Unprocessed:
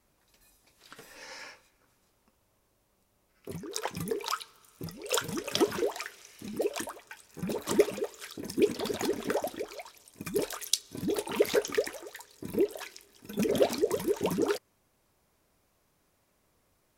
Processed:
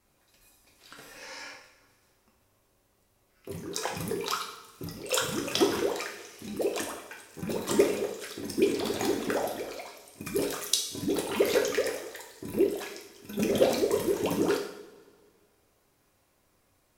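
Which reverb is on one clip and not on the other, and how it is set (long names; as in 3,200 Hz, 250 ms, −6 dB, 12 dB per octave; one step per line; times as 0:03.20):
coupled-rooms reverb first 0.72 s, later 2.1 s, from −18 dB, DRR 0.5 dB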